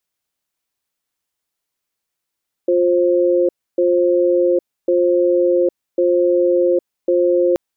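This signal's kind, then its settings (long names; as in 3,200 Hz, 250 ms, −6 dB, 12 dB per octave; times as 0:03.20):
tone pair in a cadence 353 Hz, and 528 Hz, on 0.81 s, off 0.29 s, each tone −14.5 dBFS 4.88 s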